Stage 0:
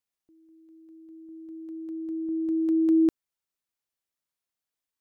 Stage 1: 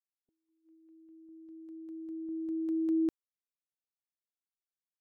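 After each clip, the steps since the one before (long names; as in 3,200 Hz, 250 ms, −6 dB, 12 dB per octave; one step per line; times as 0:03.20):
noise reduction from a noise print of the clip's start 20 dB
level −8.5 dB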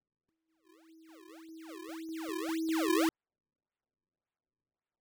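sample-and-hold swept by an LFO 36×, swing 160% 1.8 Hz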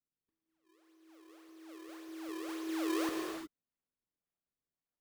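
reverb whose tail is shaped and stops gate 390 ms flat, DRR 0 dB
level −7.5 dB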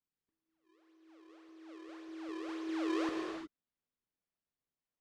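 high-frequency loss of the air 110 metres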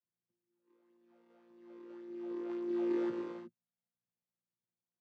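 channel vocoder with a chord as carrier bare fifth, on A#2
level +2.5 dB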